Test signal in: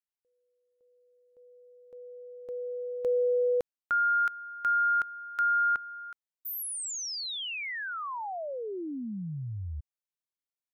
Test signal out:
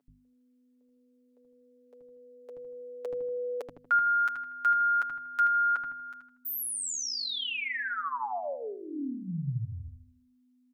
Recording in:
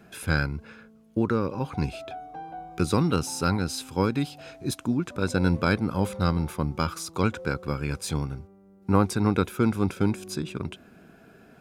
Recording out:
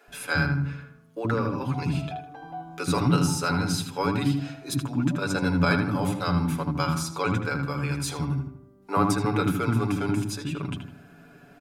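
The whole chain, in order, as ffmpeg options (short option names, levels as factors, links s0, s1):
-filter_complex "[0:a]asplit=2[s0][s1];[s1]adelay=79,lowpass=f=2400:p=1,volume=0.562,asplit=2[s2][s3];[s3]adelay=79,lowpass=f=2400:p=1,volume=0.44,asplit=2[s4][s5];[s5]adelay=79,lowpass=f=2400:p=1,volume=0.44,asplit=2[s6][s7];[s7]adelay=79,lowpass=f=2400:p=1,volume=0.44,asplit=2[s8][s9];[s9]adelay=79,lowpass=f=2400:p=1,volume=0.44[s10];[s2][s4][s6][s8][s10]amix=inputs=5:normalize=0[s11];[s0][s11]amix=inputs=2:normalize=0,aeval=exprs='val(0)+0.00282*(sin(2*PI*50*n/s)+sin(2*PI*2*50*n/s)/2+sin(2*PI*3*50*n/s)/3+sin(2*PI*4*50*n/s)/4+sin(2*PI*5*50*n/s)/5)':c=same,bandreject=f=50:t=h:w=6,bandreject=f=100:t=h:w=6,bandreject=f=150:t=h:w=6,bandreject=f=200:t=h:w=6,aecho=1:1:7:0.67,acrossover=split=380[s12][s13];[s12]adelay=80[s14];[s14][s13]amix=inputs=2:normalize=0"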